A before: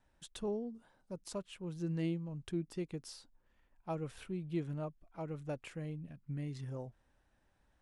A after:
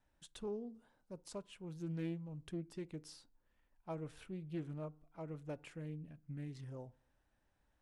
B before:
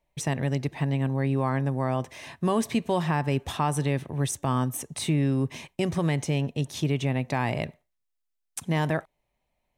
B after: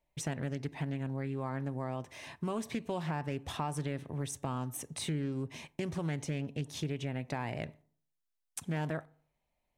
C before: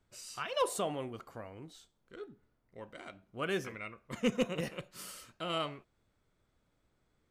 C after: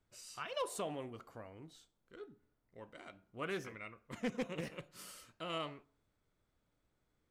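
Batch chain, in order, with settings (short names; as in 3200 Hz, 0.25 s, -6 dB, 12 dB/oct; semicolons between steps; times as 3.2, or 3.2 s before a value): compressor 2.5:1, threshold -29 dBFS; FDN reverb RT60 0.55 s, low-frequency decay 1.05×, high-frequency decay 0.45×, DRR 18.5 dB; Doppler distortion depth 0.22 ms; gain -5 dB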